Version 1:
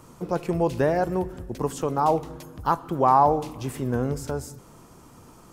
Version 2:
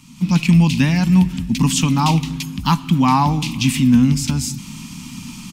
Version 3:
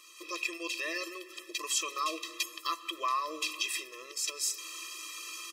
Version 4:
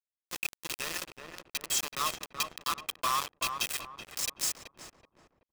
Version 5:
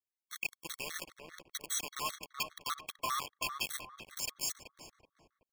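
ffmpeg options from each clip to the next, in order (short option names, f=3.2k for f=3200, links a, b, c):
-af "firequalizer=gain_entry='entry(110,0);entry(170,11);entry(250,11);entry(380,-22);entry(630,-19);entry(910,-4);entry(1500,-6);entry(2400,15);entry(11000,3)':delay=0.05:min_phase=1,dynaudnorm=f=150:g=3:m=13dB,volume=-2dB"
-af "alimiter=limit=-14.5dB:level=0:latency=1:release=289,afftfilt=real='re*eq(mod(floor(b*sr/1024/340),2),1)':imag='im*eq(mod(floor(b*sr/1024/340),2),1)':win_size=1024:overlap=0.75"
-filter_complex "[0:a]acrusher=bits=4:mix=0:aa=0.000001,asplit=2[a][b];[b]adelay=378,lowpass=f=1.2k:p=1,volume=-4.5dB,asplit=2[c][d];[d]adelay=378,lowpass=f=1.2k:p=1,volume=0.42,asplit=2[e][f];[f]adelay=378,lowpass=f=1.2k:p=1,volume=0.42,asplit=2[g][h];[h]adelay=378,lowpass=f=1.2k:p=1,volume=0.42,asplit=2[i][j];[j]adelay=378,lowpass=f=1.2k:p=1,volume=0.42[k];[a][c][e][g][i][k]amix=inputs=6:normalize=0"
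-af "afftfilt=real='re*gt(sin(2*PI*5*pts/sr)*(1-2*mod(floor(b*sr/1024/1100),2)),0)':imag='im*gt(sin(2*PI*5*pts/sr)*(1-2*mod(floor(b*sr/1024/1100),2)),0)':win_size=1024:overlap=0.75,volume=-2.5dB"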